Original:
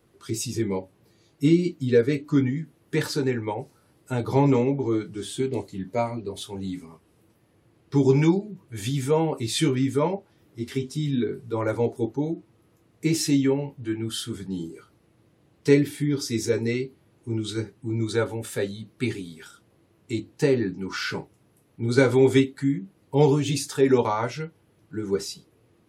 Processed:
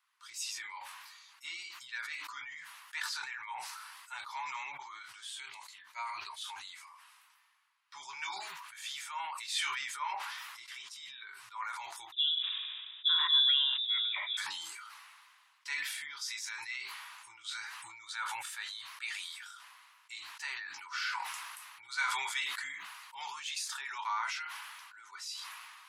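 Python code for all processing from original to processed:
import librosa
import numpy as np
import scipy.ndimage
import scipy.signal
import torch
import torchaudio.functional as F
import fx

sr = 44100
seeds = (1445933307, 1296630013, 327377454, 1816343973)

y = fx.chain(x, sr, fx.hum_notches(base_hz=50, count=3),
    fx.dispersion(late='highs', ms=47.0, hz=650.0),
    fx.freq_invert(carrier_hz=3700), at=(12.12, 14.37))
y = scipy.signal.sosfilt(scipy.signal.ellip(4, 1.0, 50, 990.0, 'highpass', fs=sr, output='sos'), y)
y = fx.high_shelf(y, sr, hz=9200.0, db=-9.0)
y = fx.sustainer(y, sr, db_per_s=28.0)
y = F.gain(torch.from_numpy(y), -5.0).numpy()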